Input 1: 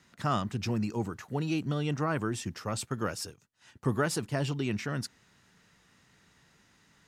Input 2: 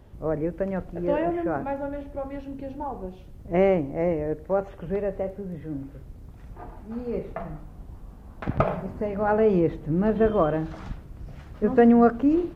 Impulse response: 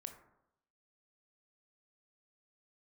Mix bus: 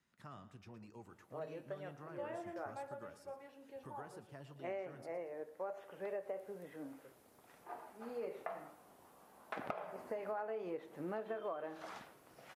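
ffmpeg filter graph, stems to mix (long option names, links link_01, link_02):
-filter_complex "[0:a]bass=frequency=250:gain=-1,treble=frequency=4000:gain=-5,acrossover=split=460|1800[link_01][link_02][link_03];[link_01]acompressor=threshold=-37dB:ratio=4[link_04];[link_02]acompressor=threshold=-35dB:ratio=4[link_05];[link_03]acompressor=threshold=-51dB:ratio=4[link_06];[link_04][link_05][link_06]amix=inputs=3:normalize=0,volume=-13.5dB,asplit=3[link_07][link_08][link_09];[link_08]volume=-13.5dB[link_10];[1:a]highpass=540,adelay=1100,volume=-1dB,asplit=2[link_11][link_12];[link_12]volume=-10.5dB[link_13];[link_09]apad=whole_len=601984[link_14];[link_11][link_14]sidechaincompress=threshold=-59dB:ratio=8:attack=16:release=1380[link_15];[2:a]atrim=start_sample=2205[link_16];[link_13][link_16]afir=irnorm=-1:irlink=0[link_17];[link_10]aecho=0:1:115|230|345|460|575:1|0.37|0.137|0.0507|0.0187[link_18];[link_07][link_15][link_17][link_18]amix=inputs=4:normalize=0,equalizer=frequency=11000:width_type=o:width=0.75:gain=8,flanger=delay=4.7:depth=4.8:regen=-73:speed=0.63:shape=sinusoidal,acompressor=threshold=-38dB:ratio=16"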